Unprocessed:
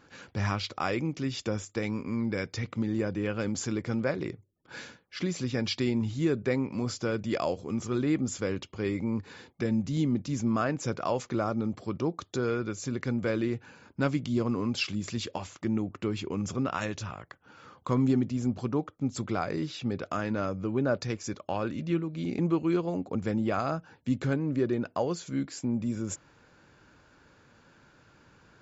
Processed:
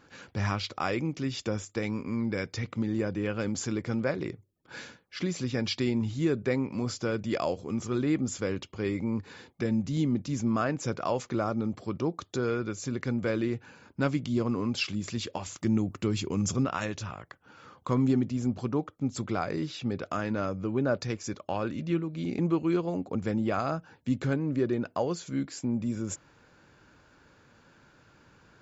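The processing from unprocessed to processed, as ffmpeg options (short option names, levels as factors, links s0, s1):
-filter_complex "[0:a]asettb=1/sr,asplit=3[s0][s1][s2];[s0]atrim=end=15.464[s3];[s1]atrim=start=15.46:end=16.65,asetpts=PTS-STARTPTS,afade=t=in:d=0.004:c=qsin,afade=t=out:st=1.186:d=0.004:c=qsin,bass=f=250:g=5,treble=f=4000:g=10[s4];[s2]atrim=start=16.646[s5];[s3][s4]acrossfade=d=0.004:c1=hsin:c2=qsin[s6];[s6][s5]acrossfade=d=0.004:c1=qsin:c2=hsin"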